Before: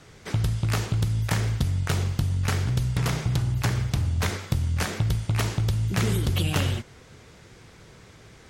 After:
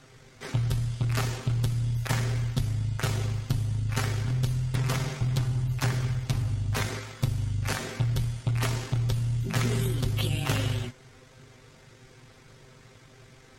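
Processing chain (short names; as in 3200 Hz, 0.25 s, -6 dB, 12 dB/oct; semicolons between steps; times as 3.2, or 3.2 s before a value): granular stretch 1.6×, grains 41 ms; gain -2 dB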